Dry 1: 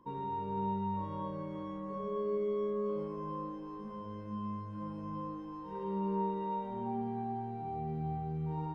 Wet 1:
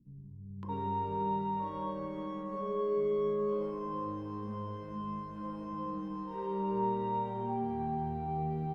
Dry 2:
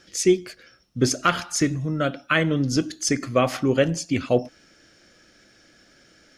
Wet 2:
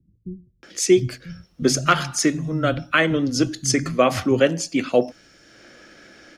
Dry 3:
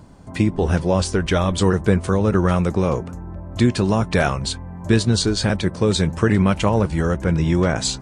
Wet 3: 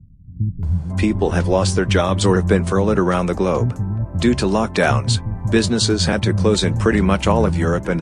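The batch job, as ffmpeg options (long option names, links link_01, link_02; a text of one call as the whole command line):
ffmpeg -i in.wav -filter_complex "[0:a]acrossover=split=120|3100[link_01][link_02][link_03];[link_02]acompressor=mode=upward:threshold=-42dB:ratio=2.5[link_04];[link_01][link_04][link_03]amix=inputs=3:normalize=0,acrossover=split=160[link_05][link_06];[link_06]adelay=630[link_07];[link_05][link_07]amix=inputs=2:normalize=0,volume=3dB" out.wav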